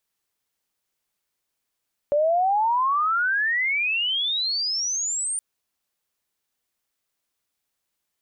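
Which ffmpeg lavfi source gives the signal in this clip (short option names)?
-f lavfi -i "aevalsrc='pow(10,(-17-7*t/3.27)/20)*sin(2*PI*570*3.27/log(9100/570)*(exp(log(9100/570)*t/3.27)-1))':d=3.27:s=44100"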